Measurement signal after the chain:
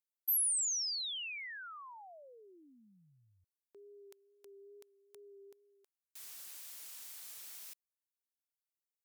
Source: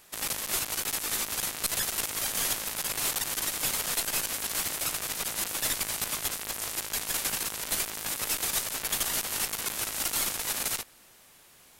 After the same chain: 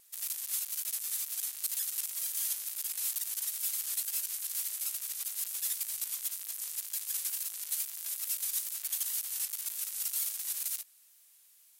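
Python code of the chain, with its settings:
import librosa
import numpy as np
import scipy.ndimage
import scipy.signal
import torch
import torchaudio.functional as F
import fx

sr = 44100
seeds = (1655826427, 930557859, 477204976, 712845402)

y = np.diff(x, prepend=0.0)
y = fx.wow_flutter(y, sr, seeds[0], rate_hz=2.1, depth_cents=28.0)
y = F.gain(torch.from_numpy(y), -5.5).numpy()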